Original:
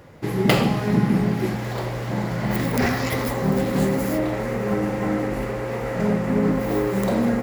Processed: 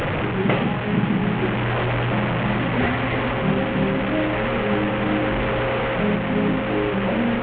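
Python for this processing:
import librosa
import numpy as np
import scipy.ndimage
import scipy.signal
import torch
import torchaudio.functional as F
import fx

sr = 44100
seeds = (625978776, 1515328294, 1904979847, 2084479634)

y = fx.delta_mod(x, sr, bps=16000, step_db=-17.5)
y = fx.rider(y, sr, range_db=10, speed_s=0.5)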